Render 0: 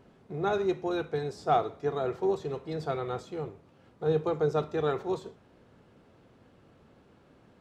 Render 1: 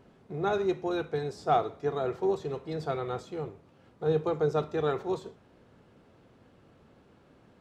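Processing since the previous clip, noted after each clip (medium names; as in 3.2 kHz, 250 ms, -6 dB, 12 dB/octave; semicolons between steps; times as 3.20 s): no audible change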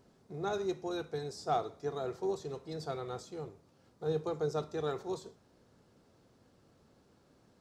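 resonant high shelf 3.8 kHz +8 dB, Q 1.5; trim -6.5 dB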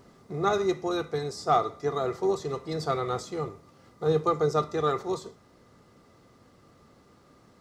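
in parallel at +3 dB: gain riding within 5 dB 2 s; on the sum: small resonant body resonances 1.2/2 kHz, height 15 dB, ringing for 60 ms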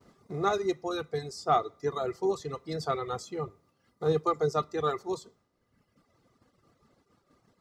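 expander -52 dBFS; reverb removal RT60 1.3 s; trim -1.5 dB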